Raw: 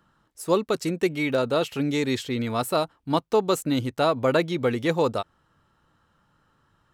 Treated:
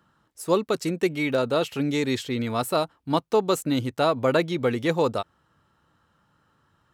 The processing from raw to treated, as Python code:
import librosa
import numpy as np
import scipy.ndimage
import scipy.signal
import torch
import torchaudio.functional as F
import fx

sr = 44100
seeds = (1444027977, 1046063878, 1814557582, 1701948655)

y = scipy.signal.sosfilt(scipy.signal.butter(2, 53.0, 'highpass', fs=sr, output='sos'), x)